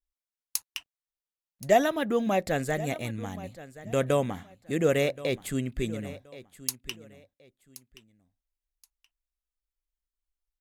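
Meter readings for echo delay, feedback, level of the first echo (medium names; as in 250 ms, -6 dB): 1075 ms, 24%, -17.0 dB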